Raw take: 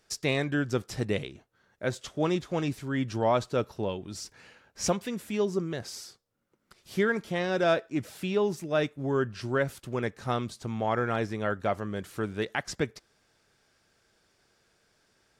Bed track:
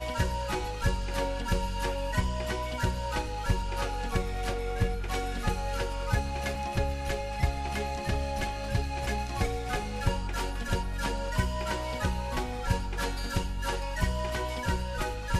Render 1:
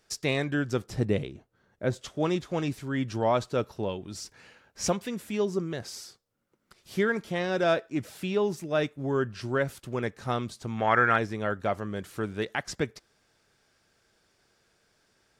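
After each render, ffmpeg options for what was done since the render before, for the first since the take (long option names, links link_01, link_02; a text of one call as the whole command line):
ffmpeg -i in.wav -filter_complex "[0:a]asettb=1/sr,asplit=3[link_01][link_02][link_03];[link_01]atrim=end=0.834[link_04];[link_02]atrim=start=0.83:end=2.03,asetpts=PTS-STARTPTS,afade=type=in:duration=0.004:curve=qsin,afade=type=out:start_time=1.196:duration=0.004:curve=qsin,tiltshelf=frequency=790:gain=4.5[link_05];[link_03]atrim=start=2.026[link_06];[link_04][link_05]acrossfade=duration=0.004:curve1=hsin:curve2=qsin[link_07];[link_07][link_06]acrossfade=duration=0.004:curve1=qsin:curve2=hsin,asplit=3[link_08][link_09][link_10];[link_08]afade=type=out:start_time=10.77:duration=0.02[link_11];[link_09]equalizer=frequency=1700:width=0.98:gain=12.5,afade=type=in:start_time=10.77:duration=0.02,afade=type=out:start_time=11.17:duration=0.02[link_12];[link_10]afade=type=in:start_time=11.17:duration=0.02[link_13];[link_11][link_12][link_13]amix=inputs=3:normalize=0" out.wav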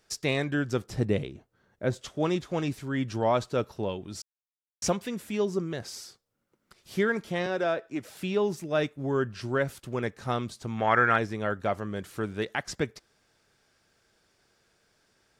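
ffmpeg -i in.wav -filter_complex "[0:a]asettb=1/sr,asplit=3[link_01][link_02][link_03];[link_01]atrim=end=7.464[link_04];[link_02]atrim=start=7.46:end=8.17,asetpts=PTS-STARTPTS,afade=type=in:duration=0.004:curve=qsin,afade=type=out:start_time=0.706:duration=0.004:curve=qsin,acrossover=split=290|2500[link_05][link_06][link_07];[link_05]acompressor=threshold=-43dB:ratio=4[link_08];[link_06]acompressor=threshold=-24dB:ratio=4[link_09];[link_07]acompressor=threshold=-48dB:ratio=4[link_10];[link_08][link_09][link_10]amix=inputs=3:normalize=0[link_11];[link_03]atrim=start=8.166[link_12];[link_04][link_11]acrossfade=duration=0.004:curve1=hsin:curve2=qsin[link_13];[link_13][link_12]acrossfade=duration=0.004:curve1=qsin:curve2=hsin,asplit=3[link_14][link_15][link_16];[link_14]atrim=end=4.22,asetpts=PTS-STARTPTS,afade=type=out:start_time=4.216:duration=0.004:curve=hsin[link_17];[link_15]atrim=start=4.22:end=4.82,asetpts=PTS-STARTPTS,volume=0[link_18];[link_16]atrim=start=4.82,asetpts=PTS-STARTPTS,afade=type=in:duration=0.004:curve=hsin[link_19];[link_17][link_18][link_19]concat=n=3:v=0:a=1" out.wav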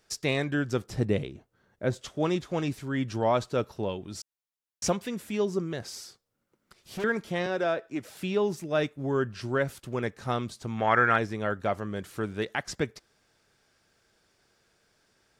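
ffmpeg -i in.wav -filter_complex "[0:a]asettb=1/sr,asplit=3[link_01][link_02][link_03];[link_01]atrim=end=5.904[link_04];[link_02]atrim=start=5.9:end=7.04,asetpts=PTS-STARTPTS,afade=type=in:duration=0.004:curve=qsin,afade=type=out:start_time=1.136:duration=0.004:curve=qsin,volume=31dB,asoftclip=hard,volume=-31dB[link_05];[link_03]atrim=start=7.036[link_06];[link_04][link_05]acrossfade=duration=0.004:curve1=hsin:curve2=qsin[link_07];[link_07][link_06]acrossfade=duration=0.004:curve1=qsin:curve2=hsin" out.wav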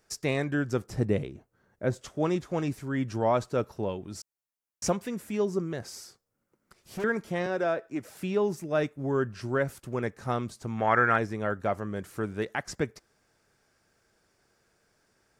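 ffmpeg -i in.wav -af "equalizer=frequency=3500:width=1.4:gain=-7" out.wav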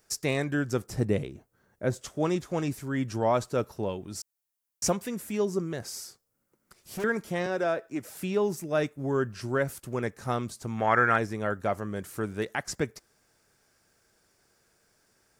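ffmpeg -i in.wav -af "highshelf=frequency=6600:gain=9.5" out.wav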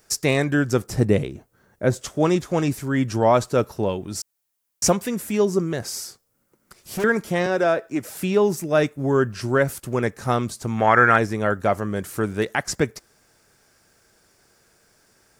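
ffmpeg -i in.wav -af "volume=8dB,alimiter=limit=-3dB:level=0:latency=1" out.wav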